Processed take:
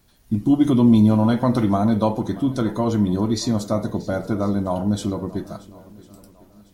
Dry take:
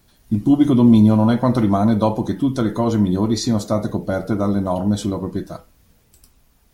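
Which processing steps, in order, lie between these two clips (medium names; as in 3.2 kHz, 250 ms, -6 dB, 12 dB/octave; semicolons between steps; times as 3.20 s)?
shuffle delay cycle 1051 ms, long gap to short 1.5:1, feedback 31%, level -20 dB; 0.67–1.75 s: tape noise reduction on one side only encoder only; trim -2.5 dB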